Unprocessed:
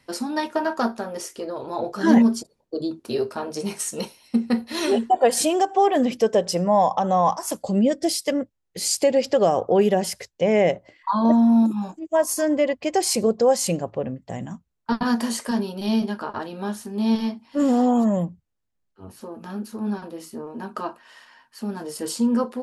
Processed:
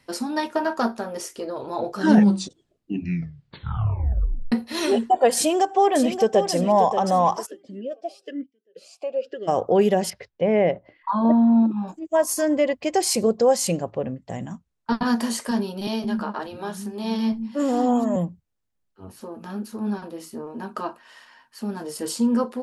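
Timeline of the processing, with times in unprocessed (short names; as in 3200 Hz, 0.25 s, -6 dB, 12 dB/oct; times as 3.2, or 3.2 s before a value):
1.96 tape stop 2.56 s
5.37–6.52 echo throw 0.58 s, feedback 40%, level -9.5 dB
7.45–9.47 vowel sweep a-i 1.5 Hz -> 0.77 Hz
10.1–11.88 air absorption 320 m
13.67–15.07 LPF 11000 Hz
15.87–18.16 bands offset in time highs, lows 0.17 s, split 240 Hz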